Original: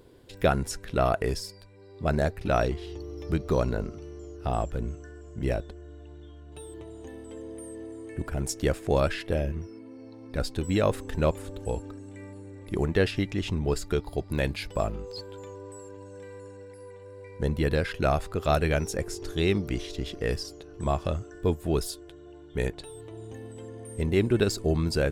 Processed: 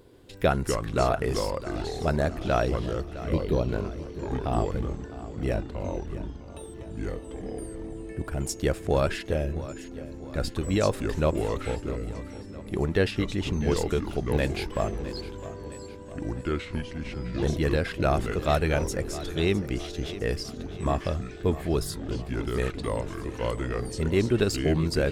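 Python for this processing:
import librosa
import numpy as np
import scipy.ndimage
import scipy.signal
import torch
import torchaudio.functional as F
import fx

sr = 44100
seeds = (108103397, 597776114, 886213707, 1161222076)

y = fx.echo_pitch(x, sr, ms=133, semitones=-4, count=3, db_per_echo=-6.0)
y = fx.env_phaser(y, sr, low_hz=540.0, high_hz=1600.0, full_db=-20.0, at=(3.03, 3.69))
y = fx.echo_feedback(y, sr, ms=658, feedback_pct=50, wet_db=-15)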